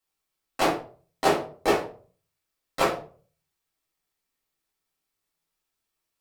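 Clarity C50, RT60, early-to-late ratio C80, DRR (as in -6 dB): 8.0 dB, 0.45 s, 13.0 dB, -5.5 dB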